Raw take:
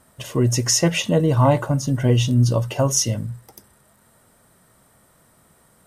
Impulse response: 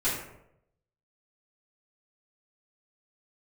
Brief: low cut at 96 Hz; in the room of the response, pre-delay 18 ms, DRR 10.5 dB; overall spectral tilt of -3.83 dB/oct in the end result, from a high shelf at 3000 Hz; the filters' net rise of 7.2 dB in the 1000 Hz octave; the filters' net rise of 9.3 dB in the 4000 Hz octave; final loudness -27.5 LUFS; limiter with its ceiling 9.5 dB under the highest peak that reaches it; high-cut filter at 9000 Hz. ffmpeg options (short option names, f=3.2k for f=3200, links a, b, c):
-filter_complex "[0:a]highpass=96,lowpass=9k,equalizer=f=1k:t=o:g=7.5,highshelf=f=3k:g=8,equalizer=f=4k:t=o:g=6,alimiter=limit=-6.5dB:level=0:latency=1,asplit=2[a][b];[1:a]atrim=start_sample=2205,adelay=18[c];[b][c]afir=irnorm=-1:irlink=0,volume=-20dB[d];[a][d]amix=inputs=2:normalize=0,volume=-10dB"